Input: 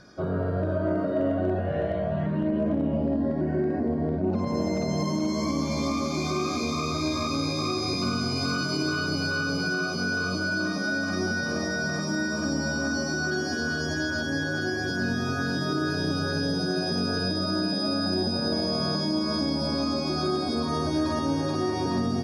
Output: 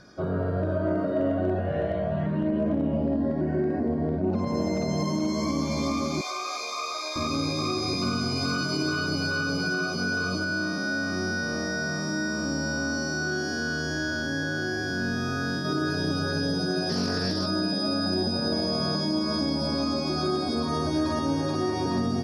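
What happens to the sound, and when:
6.21–7.16 HPF 570 Hz 24 dB/oct
10.44–15.65 time blur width 0.136 s
16.89–17.48 Doppler distortion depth 0.17 ms

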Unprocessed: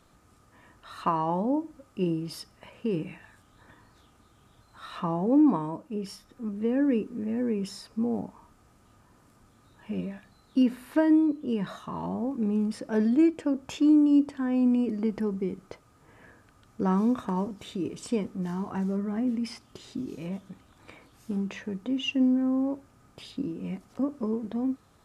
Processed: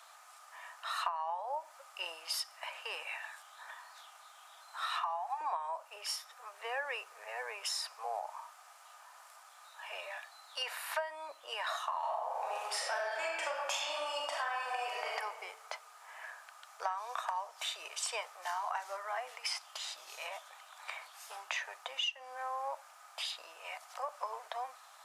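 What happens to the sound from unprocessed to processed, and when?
4.88–5.41 steep high-pass 680 Hz 96 dB/oct
11.98–15.12 reverb throw, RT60 1.3 s, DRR -4 dB
whole clip: steep high-pass 670 Hz 48 dB/oct; compressor 16:1, threshold -41 dBFS; gain +8.5 dB

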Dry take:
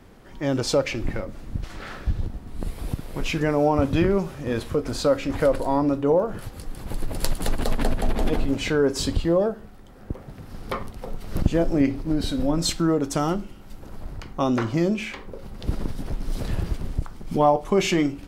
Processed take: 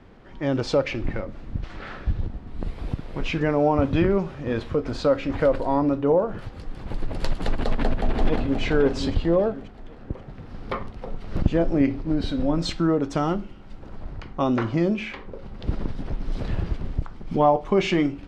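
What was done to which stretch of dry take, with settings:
7.58–8.61 echo throw 0.53 s, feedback 40%, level -6.5 dB
whole clip: LPF 3700 Hz 12 dB/oct

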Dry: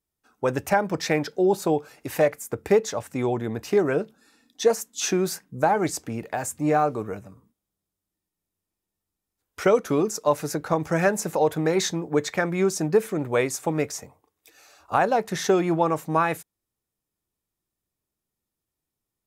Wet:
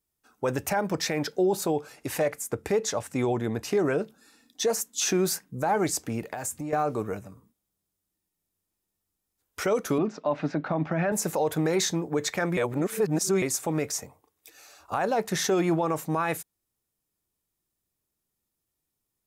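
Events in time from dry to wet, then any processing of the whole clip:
1.73–4.02 LPF 12000 Hz
6.21–6.73 compressor 12:1, threshold -30 dBFS
9.98–11.12 speaker cabinet 160–3400 Hz, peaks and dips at 160 Hz +6 dB, 260 Hz +10 dB, 460 Hz -7 dB, 650 Hz +6 dB
12.57–13.42 reverse
whole clip: high shelf 5400 Hz +5 dB; limiter -16.5 dBFS

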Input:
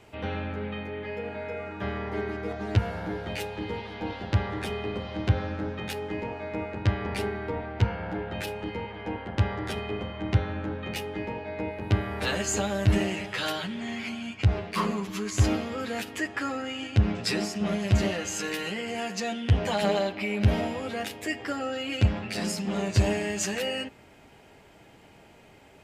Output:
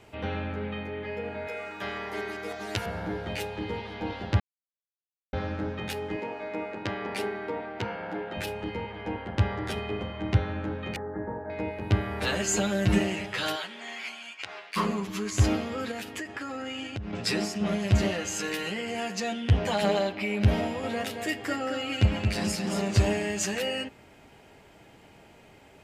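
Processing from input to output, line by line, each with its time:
1.47–2.86 RIAA curve recording
4.4–5.33 mute
6.16–8.37 HPF 240 Hz
10.96–11.5 elliptic low-pass 1700 Hz
12.42–12.99 comb 5.6 ms
13.55–14.75 HPF 460 Hz -> 1300 Hz
15.91–17.13 compressor 10:1, threshold -31 dBFS
20.61–23.05 tapped delay 0.223/0.442 s -6/-19 dB

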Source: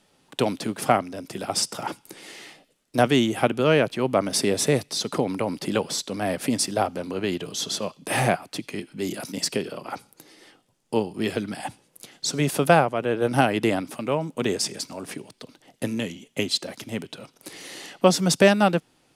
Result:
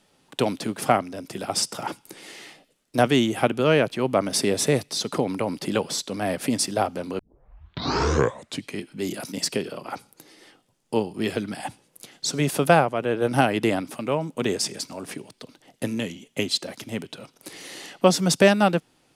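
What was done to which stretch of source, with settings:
7.19 tape start 1.54 s

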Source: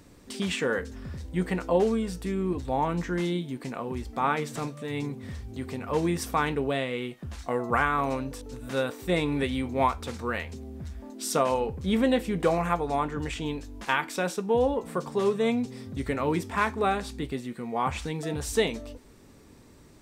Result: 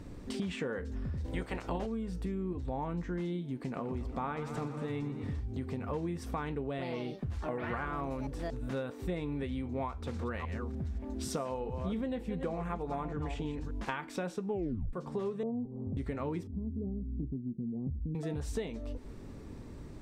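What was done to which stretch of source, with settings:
1.24–1.85 spectral limiter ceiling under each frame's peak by 20 dB
3.54–5.4 warbling echo 0.119 s, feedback 67%, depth 79 cents, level -12.5 dB
6.66–8.83 echoes that change speed 0.122 s, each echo +4 st, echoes 2, each echo -6 dB
9.86–13.71 reverse delay 0.297 s, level -10 dB
14.49 tape stop 0.44 s
15.43–15.97 steep low-pass 930 Hz
16.47–18.15 inverse Chebyshev low-pass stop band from 1800 Hz, stop band 80 dB
whole clip: tilt -2 dB/oct; compressor 6:1, threshold -36 dBFS; high shelf 9100 Hz -5 dB; gain +2 dB

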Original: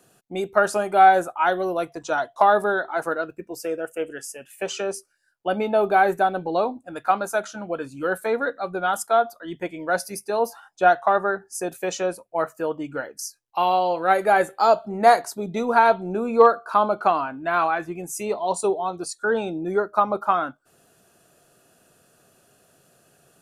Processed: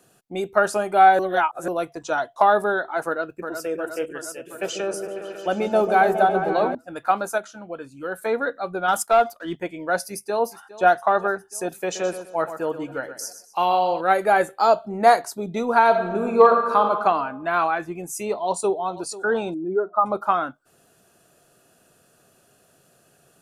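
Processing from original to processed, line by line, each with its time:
1.19–1.68 reverse
3.06–3.69 echo throw 0.36 s, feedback 70%, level -6.5 dB
4.26–6.75 repeats that get brighter 0.137 s, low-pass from 400 Hz, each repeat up 1 oct, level -3 dB
7.38–8.18 gain -5.5 dB
8.88–9.58 sample leveller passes 1
10.1–10.86 echo throw 0.41 s, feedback 70%, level -17.5 dB
11.82–14.01 feedback echo 0.124 s, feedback 32%, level -11 dB
15.86–16.83 reverb throw, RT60 1.4 s, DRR 3.5 dB
18.37–19.02 echo throw 0.49 s, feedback 35%, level -16.5 dB
19.54–20.06 spectral contrast raised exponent 1.7

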